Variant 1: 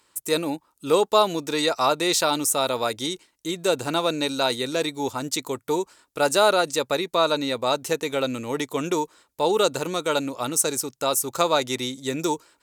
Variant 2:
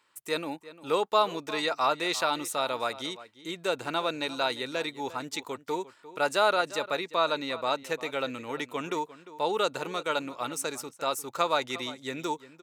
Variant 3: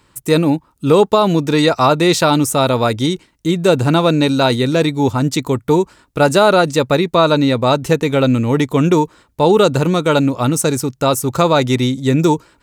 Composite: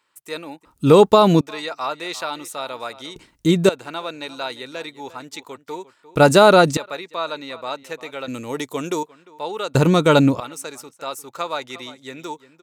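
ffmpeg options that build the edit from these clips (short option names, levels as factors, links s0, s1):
-filter_complex "[2:a]asplit=4[s0][s1][s2][s3];[1:a]asplit=6[s4][s5][s6][s7][s8][s9];[s4]atrim=end=0.652[s10];[s0]atrim=start=0.648:end=1.412[s11];[s5]atrim=start=1.408:end=3.162[s12];[s1]atrim=start=3.158:end=3.692[s13];[s6]atrim=start=3.688:end=6.152[s14];[s2]atrim=start=6.148:end=6.772[s15];[s7]atrim=start=6.768:end=8.282[s16];[0:a]atrim=start=8.278:end=9.032[s17];[s8]atrim=start=9.028:end=9.752[s18];[s3]atrim=start=9.748:end=10.402[s19];[s9]atrim=start=10.398[s20];[s10][s11]acrossfade=d=0.004:c1=hsin:c2=hsin[s21];[s21][s12]acrossfade=d=0.004:c1=hsin:c2=hsin[s22];[s22][s13]acrossfade=d=0.004:c1=hsin:c2=hsin[s23];[s23][s14]acrossfade=d=0.004:c1=hsin:c2=hsin[s24];[s24][s15]acrossfade=d=0.004:c1=hsin:c2=hsin[s25];[s25][s16]acrossfade=d=0.004:c1=hsin:c2=hsin[s26];[s26][s17]acrossfade=d=0.004:c1=hsin:c2=hsin[s27];[s27][s18]acrossfade=d=0.004:c1=hsin:c2=hsin[s28];[s28][s19]acrossfade=d=0.004:c1=hsin:c2=hsin[s29];[s29][s20]acrossfade=d=0.004:c1=hsin:c2=hsin"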